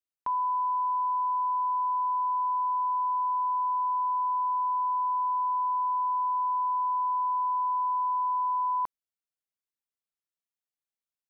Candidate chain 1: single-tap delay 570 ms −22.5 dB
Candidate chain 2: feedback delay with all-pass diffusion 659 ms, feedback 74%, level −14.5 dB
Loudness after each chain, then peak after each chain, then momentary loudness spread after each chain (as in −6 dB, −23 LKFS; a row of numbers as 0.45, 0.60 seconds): −27.0, −28.0 LKFS; −24.0, −23.0 dBFS; 1, 17 LU